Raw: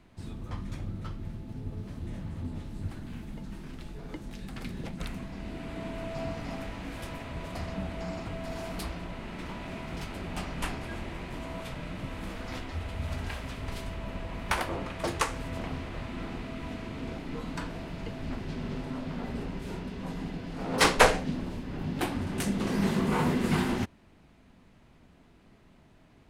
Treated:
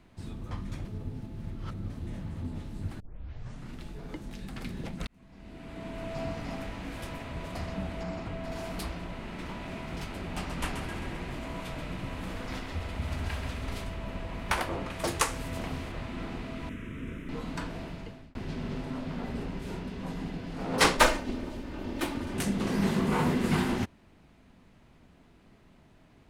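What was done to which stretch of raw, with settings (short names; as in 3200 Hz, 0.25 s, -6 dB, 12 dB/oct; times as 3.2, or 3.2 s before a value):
0.85–1.9 reverse
3 tape start 0.77 s
5.07–6.15 fade in
8.03–8.52 high shelf 5400 Hz -7.5 dB
10.25–13.84 split-band echo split 440 Hz, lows 0.216 s, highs 0.132 s, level -7 dB
14.9–15.92 high shelf 6500 Hz +10 dB
16.69–17.29 fixed phaser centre 1900 Hz, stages 4
17.85–18.35 fade out
20.97–22.34 minimum comb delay 3.3 ms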